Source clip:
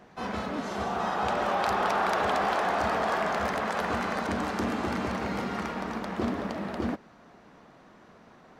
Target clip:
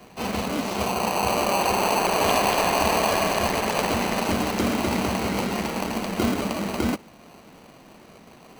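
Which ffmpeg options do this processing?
ffmpeg -i in.wav -filter_complex "[0:a]asettb=1/sr,asplit=3[link_01][link_02][link_03];[link_01]atrim=end=0.914[link_04];[link_02]atrim=start=0.91:end=2.22,asetpts=PTS-STARTPTS,afade=type=in:duration=0.004:curve=qsin,afade=type=out:start_time=1.306:duration=0.004:curve=qsin,highshelf=frequency=3100:gain=-11.5[link_05];[link_03]atrim=start=2.216[link_06];[link_04][link_05]acrossfade=duration=0.004:curve1=hsin:curve2=qsin[link_07];[link_07][link_06]acrossfade=duration=0.004:curve1=qsin:curve2=hsin,acrossover=split=210|1600[link_08][link_09][link_10];[link_09]acrusher=samples=25:mix=1:aa=0.000001[link_11];[link_08][link_11][link_10]amix=inputs=3:normalize=0,volume=6.5dB" out.wav

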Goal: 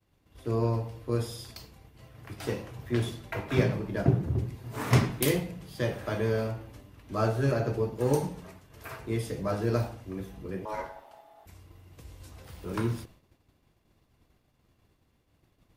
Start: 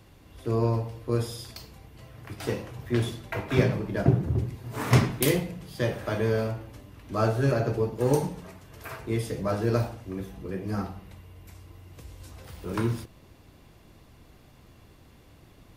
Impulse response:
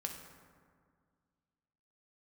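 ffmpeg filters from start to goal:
-filter_complex "[0:a]agate=range=-33dB:threshold=-44dB:ratio=3:detection=peak,asettb=1/sr,asplit=3[link_01][link_02][link_03];[link_01]atrim=end=10.654[link_04];[link_02]atrim=start=10.65:end=11.46,asetpts=PTS-STARTPTS,afade=type=in:duration=0.004:curve=qsin,afade=type=out:start_time=0.806:duration=0.004:curve=qsin,aeval=exprs='val(0)*sin(2*PI*750*n/s)':channel_layout=same[link_05];[link_03]atrim=start=11.456[link_06];[link_04][link_05]acrossfade=duration=0.004:curve1=hsin:curve2=qsin[link_07];[link_07][link_06]acrossfade=duration=0.004:curve1=qsin:curve2=hsin,volume=-2.5dB"

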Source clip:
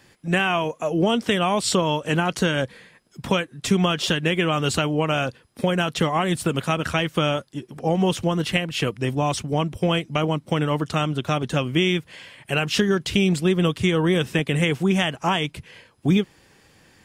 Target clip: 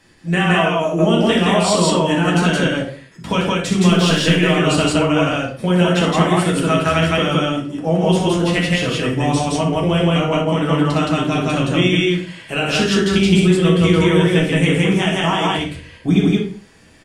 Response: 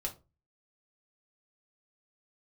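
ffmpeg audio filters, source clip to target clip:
-filter_complex "[0:a]asettb=1/sr,asplit=3[link_01][link_02][link_03];[link_01]atrim=end=3.894[link_04];[link_02]atrim=start=3.89:end=4.39,asetpts=PTS-STARTPTS,afade=type=in:duration=0.004:curve=qsin,afade=type=out:start_time=0.496:duration=0.004:curve=qsin,aeval=exprs='val(0)+0.5*0.0282*sgn(val(0))':channel_layout=same[link_05];[link_03]atrim=start=4.386[link_06];[link_04][link_05]acrossfade=duration=0.004:curve1=hsin:curve2=qsin[link_07];[link_07][link_06]acrossfade=duration=0.004:curve1=qsin:curve2=hsin,aecho=1:1:61.22|169.1:0.447|1[link_08];[1:a]atrim=start_sample=2205,afade=type=out:start_time=0.19:duration=0.01,atrim=end_sample=8820,asetrate=22050,aresample=44100[link_09];[link_08][link_09]afir=irnorm=-1:irlink=0,volume=-3dB"

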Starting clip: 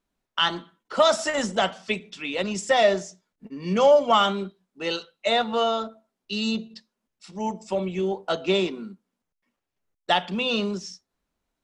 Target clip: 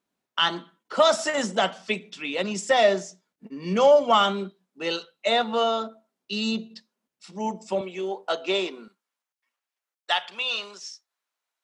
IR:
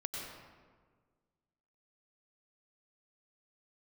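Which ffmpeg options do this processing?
-af "asetnsamples=nb_out_samples=441:pad=0,asendcmd='7.81 highpass f 410;8.88 highpass f 960',highpass=150"

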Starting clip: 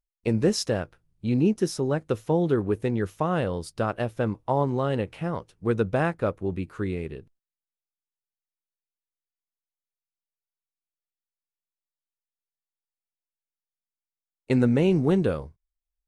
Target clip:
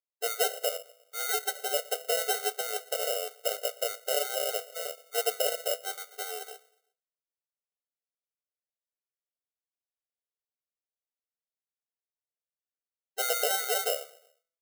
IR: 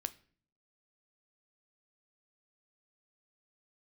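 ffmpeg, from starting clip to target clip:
-filter_complex "[0:a]bandreject=frequency=167.7:width_type=h:width=4,bandreject=frequency=335.4:width_type=h:width=4,bandreject=frequency=503.1:width_type=h:width=4,bandreject=frequency=670.8:width_type=h:width=4,bandreject=frequency=838.5:width_type=h:width=4,bandreject=frequency=1006.2:width_type=h:width=4,bandreject=frequency=1173.9:width_type=h:width=4,bandreject=frequency=1341.6:width_type=h:width=4,bandreject=frequency=1509.3:width_type=h:width=4,bandreject=frequency=1677:width_type=h:width=4,bandreject=frequency=1844.7:width_type=h:width=4,bandreject=frequency=2012.4:width_type=h:width=4,bandreject=frequency=2180.1:width_type=h:width=4,bandreject=frequency=2347.8:width_type=h:width=4,bandreject=frequency=2515.5:width_type=h:width=4,bandreject=frequency=2683.2:width_type=h:width=4,bandreject=frequency=2850.9:width_type=h:width=4,asplit=2[link_01][link_02];[1:a]atrim=start_sample=2205,lowpass=4200[link_03];[link_02][link_03]afir=irnorm=-1:irlink=0,volume=-1dB[link_04];[link_01][link_04]amix=inputs=2:normalize=0,atempo=1.1,lowpass=5700,aecho=1:1:119|238|357:0.0668|0.0327|0.016,acrusher=samples=38:mix=1:aa=0.000001,crystalizer=i=2.5:c=0,afftfilt=real='re*eq(mod(floor(b*sr/1024/390),2),1)':imag='im*eq(mod(floor(b*sr/1024/390),2),1)':win_size=1024:overlap=0.75,volume=-8.5dB"

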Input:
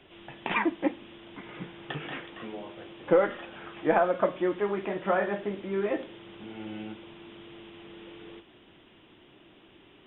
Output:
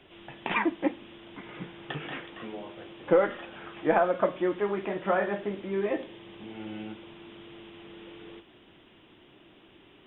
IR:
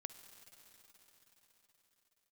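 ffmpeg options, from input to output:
-filter_complex "[0:a]asettb=1/sr,asplit=3[link_01][link_02][link_03];[link_01]atrim=end=5.704[link_04];[link_02]atrim=start=5.7:end=6.55,asetpts=PTS-STARTPTS,afade=type=in:duration=0.004:curve=qsin,afade=type=out:start_time=0.846:duration=0.004:curve=qsin,bandreject=frequency=1400:width=9.1[link_05];[link_03]atrim=start=6.546[link_06];[link_04][link_05]acrossfade=duration=0.004:curve1=hsin:curve2=qsin[link_07];[link_07][link_06]acrossfade=duration=0.004:curve1=qsin:curve2=hsin"

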